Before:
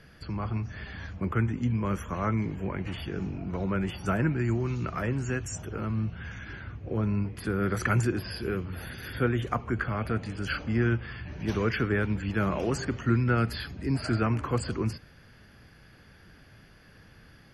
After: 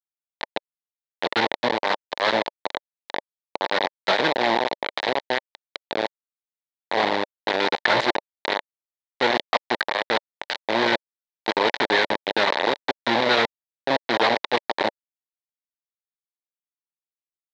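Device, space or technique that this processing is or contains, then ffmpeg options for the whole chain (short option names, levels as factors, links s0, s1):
hand-held game console: -af "acrusher=bits=3:mix=0:aa=0.000001,highpass=450,equalizer=f=580:t=q:w=4:g=4,equalizer=f=890:t=q:w=4:g=6,equalizer=f=1300:t=q:w=4:g=-8,equalizer=f=1900:t=q:w=4:g=5,equalizer=f=2700:t=q:w=4:g=-5,equalizer=f=3900:t=q:w=4:g=7,lowpass=f=4100:w=0.5412,lowpass=f=4100:w=1.3066,volume=2.37"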